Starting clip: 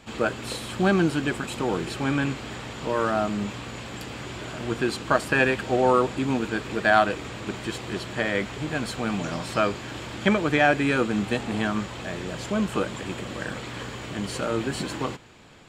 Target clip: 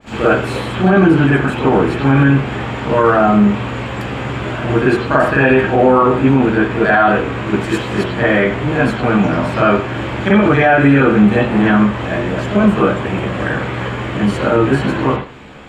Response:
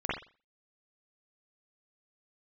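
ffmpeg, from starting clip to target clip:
-filter_complex "[0:a]asettb=1/sr,asplit=3[a][b][c];[a]atrim=end=7.614[d];[b]atrim=start=7.61:end=8.04,asetpts=PTS-STARTPTS,afade=t=in:d=0.004:c=qsin,afade=t=out:st=0.426:d=0.004:c=qsin,bass=f=250:g=-2,treble=f=4k:g=8[e];[c]atrim=start=8.036[f];[d][e]acrossfade=d=0.004:c1=hsin:c2=qsin[g];[g][f]acrossfade=d=0.004:c1=qsin:c2=hsin[h];[1:a]atrim=start_sample=2205[i];[h][i]afir=irnorm=-1:irlink=0,alimiter=level_in=7dB:limit=-1dB:release=50:level=0:latency=1,adynamicequalizer=threshold=0.0316:dfrequency=2800:dqfactor=0.7:tfrequency=2800:tqfactor=0.7:attack=5:release=100:ratio=0.375:range=4:mode=cutabove:tftype=highshelf,volume=-1dB"

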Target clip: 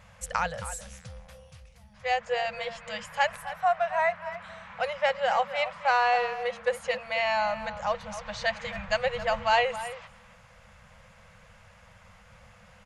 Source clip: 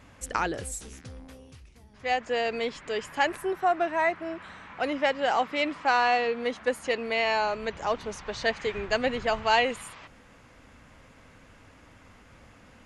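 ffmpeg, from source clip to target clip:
-filter_complex "[0:a]asplit=2[a][b];[b]adelay=270,highpass=300,lowpass=3.4k,asoftclip=type=hard:threshold=-17.5dB,volume=-12dB[c];[a][c]amix=inputs=2:normalize=0,afftfilt=real='re*(1-between(b*sr/4096,220,470))':imag='im*(1-between(b*sr/4096,220,470))':win_size=4096:overlap=0.75,adynamicequalizer=threshold=0.00891:dfrequency=2400:dqfactor=0.7:tfrequency=2400:tqfactor=0.7:attack=5:release=100:ratio=0.375:range=2:mode=cutabove:tftype=highshelf"

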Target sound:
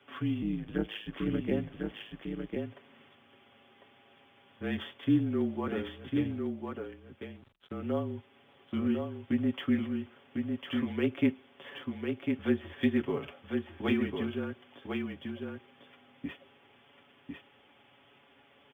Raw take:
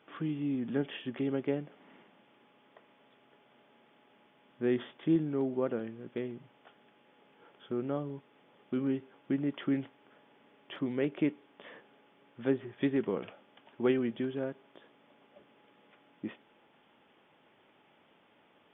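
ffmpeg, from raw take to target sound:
-filter_complex "[0:a]aecho=1:1:6.8:0.77,acrossover=split=110|630[a][b][c];[a]alimiter=level_in=25dB:limit=-24dB:level=0:latency=1:release=186,volume=-25dB[d];[d][b][c]amix=inputs=3:normalize=0,asplit=3[e][f][g];[e]afade=t=out:st=0.41:d=0.02[h];[f]aeval=exprs='val(0)*sin(2*PI*53*n/s)':c=same,afade=t=in:st=0.41:d=0.02,afade=t=out:st=1.5:d=0.02[i];[g]afade=t=in:st=1.5:d=0.02[j];[h][i][j]amix=inputs=3:normalize=0,asettb=1/sr,asplit=3[k][l][m];[k]atrim=end=6.314[n];[l]atrim=start=6.31:end=7.72,asetpts=PTS-STARTPTS,afade=t=in:d=0.004:c=qsin,afade=t=out:st=1.406:d=0.004:c=qsin,aeval=exprs='sgn(val(0))*max(abs(val(0))-0.00237,0)':c=same[o];[m]atrim=start=7.716[p];[n][o]acrossfade=d=0.004:c1=hsin:c2=qsin[q];[q][p]acrossfade=d=0.004:c1=qsin:c2=hsin,crystalizer=i=3:c=0,afreqshift=-34,asplit=2[r][s];[s]aecho=0:1:1050:0.596[t];[r][t]amix=inputs=2:normalize=0,aresample=8000,aresample=44100,volume=-1.5dB" -ar 44100 -c:a adpcm_ima_wav

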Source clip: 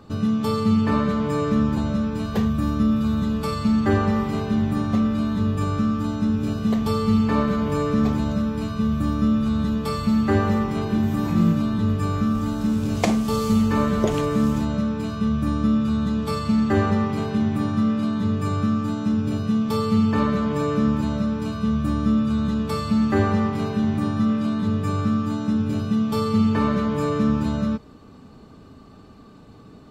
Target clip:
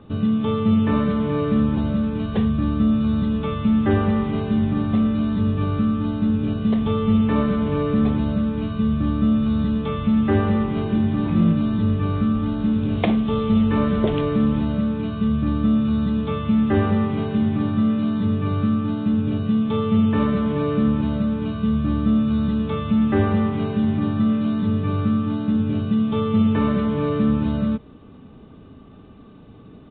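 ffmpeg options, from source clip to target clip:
-filter_complex "[0:a]acrossover=split=620[a][b];[a]acontrast=66[c];[c][b]amix=inputs=2:normalize=0,crystalizer=i=3.5:c=0,aresample=8000,aresample=44100,volume=-4.5dB"

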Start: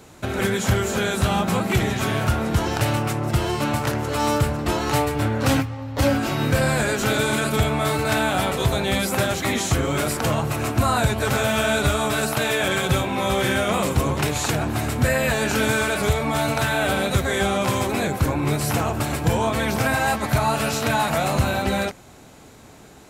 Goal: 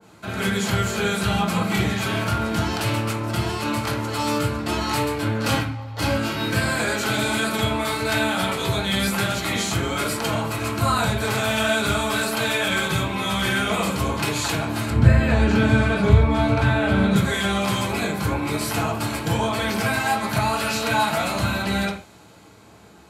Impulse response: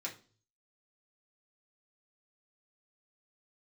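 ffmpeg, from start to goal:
-filter_complex "[0:a]asettb=1/sr,asplit=3[a][b][c];[a]atrim=end=14.904[d];[b]atrim=start=14.9:end=17.16,asetpts=PTS-STARTPTS,afade=t=in:d=0.004:c=qsin,afade=t=out:st=2.256:d=0.004:c=qsin,aemphasis=mode=reproduction:type=riaa[e];[c]atrim=start=17.156[f];[d][e]acrossfade=d=0.004:c1=hsin:c2=qsin[g];[g][f]acrossfade=d=0.004:c1=qsin:c2=hsin[h];[1:a]atrim=start_sample=2205,afade=t=out:st=0.14:d=0.01,atrim=end_sample=6615,asetrate=26460,aresample=44100[i];[h][i]afir=irnorm=-1:irlink=0,adynamicequalizer=threshold=0.0251:dfrequency=1800:dqfactor=0.7:tfrequency=1800:tqfactor=0.7:attack=5:release=100:ratio=0.375:range=2.5:mode=boostabove:tftype=highshelf,volume=-5.5dB"

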